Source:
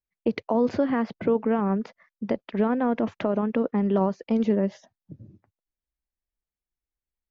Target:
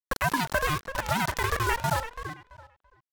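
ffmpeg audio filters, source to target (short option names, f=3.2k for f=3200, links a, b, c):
-filter_complex "[0:a]highpass=f=93:p=1,aresample=16000,acrusher=bits=4:mix=0:aa=0.000001,aresample=44100,asplit=2[a][b];[b]adelay=783,lowpass=f=1.9k:p=1,volume=-10dB,asplit=2[c][d];[d]adelay=783,lowpass=f=1.9k:p=1,volume=0.24,asplit=2[e][f];[f]adelay=783,lowpass=f=1.9k:p=1,volume=0.24[g];[a][c][e][g]amix=inputs=4:normalize=0,asetrate=103194,aresample=44100,aeval=exprs='val(0)*sin(2*PI*490*n/s+490*0.25/1.3*sin(2*PI*1.3*n/s))':c=same"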